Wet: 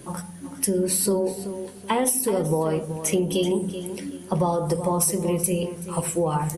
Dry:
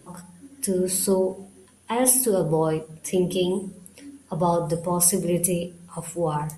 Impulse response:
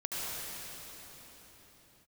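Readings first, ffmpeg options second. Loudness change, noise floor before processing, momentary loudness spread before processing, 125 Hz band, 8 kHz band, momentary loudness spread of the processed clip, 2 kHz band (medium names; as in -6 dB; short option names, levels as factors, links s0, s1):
-1.0 dB, -54 dBFS, 15 LU, +1.5 dB, -1.5 dB, 12 LU, +2.5 dB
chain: -filter_complex "[0:a]acompressor=threshold=0.0398:ratio=6,asplit=2[s0][s1];[s1]adelay=380,lowpass=f=5000:p=1,volume=0.282,asplit=2[s2][s3];[s3]adelay=380,lowpass=f=5000:p=1,volume=0.32,asplit=2[s4][s5];[s5]adelay=380,lowpass=f=5000:p=1,volume=0.32[s6];[s2][s4][s6]amix=inputs=3:normalize=0[s7];[s0][s7]amix=inputs=2:normalize=0,volume=2.51"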